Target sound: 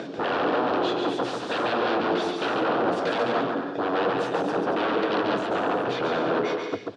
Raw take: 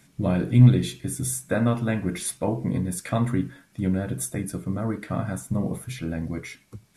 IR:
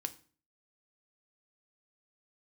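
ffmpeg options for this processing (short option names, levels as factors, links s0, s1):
-filter_complex "[0:a]equalizer=f=470:t=o:w=1.4:g=13,asplit=2[s0][s1];[s1]acompressor=mode=upward:threshold=0.126:ratio=2.5,volume=0.794[s2];[s0][s2]amix=inputs=2:normalize=0,alimiter=limit=0.422:level=0:latency=1:release=127,acontrast=24,aeval=exprs='0.133*(abs(mod(val(0)/0.133+3,4)-2)-1)':c=same,highpass=260,equalizer=f=310:t=q:w=4:g=6,equalizer=f=480:t=q:w=4:g=5,equalizer=f=700:t=q:w=4:g=4,equalizer=f=1400:t=q:w=4:g=3,equalizer=f=2100:t=q:w=4:g=-10,lowpass=f=4300:w=0.5412,lowpass=f=4300:w=1.3066,aecho=1:1:140|231|290.2|328.6|353.6:0.631|0.398|0.251|0.158|0.1,volume=0.596"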